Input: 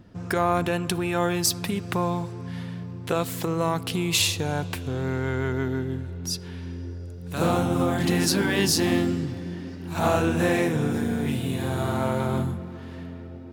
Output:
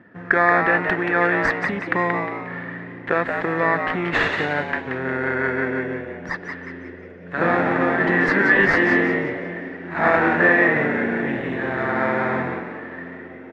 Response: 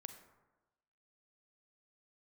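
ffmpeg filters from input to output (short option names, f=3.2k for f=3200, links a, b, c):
-filter_complex "[0:a]highpass=220,asplit=2[a][b];[b]acrusher=samples=15:mix=1:aa=0.000001,volume=-4dB[c];[a][c]amix=inputs=2:normalize=0,lowpass=f=1.8k:t=q:w=7.9,asplit=6[d][e][f][g][h][i];[e]adelay=179,afreqshift=110,volume=-6dB[j];[f]adelay=358,afreqshift=220,volume=-14.4dB[k];[g]adelay=537,afreqshift=330,volume=-22.8dB[l];[h]adelay=716,afreqshift=440,volume=-31.2dB[m];[i]adelay=895,afreqshift=550,volume=-39.6dB[n];[d][j][k][l][m][n]amix=inputs=6:normalize=0,volume=-1dB"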